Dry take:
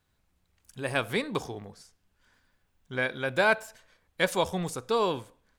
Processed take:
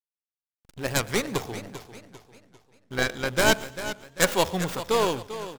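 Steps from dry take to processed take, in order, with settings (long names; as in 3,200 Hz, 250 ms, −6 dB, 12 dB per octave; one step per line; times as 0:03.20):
stylus tracing distortion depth 0.32 ms
high-shelf EQ 2,200 Hz +7 dB
in parallel at −6 dB: sample-and-hold swept by an LFO 22×, swing 160% 0.39 Hz
on the sum: slack as between gear wheels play −37 dBFS
on a send: repeating echo 116 ms, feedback 35%, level −22.5 dB
on the sum: feedback echo with a swinging delay time 396 ms, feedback 40%, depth 71 cents, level −12.5 dB
level −1 dB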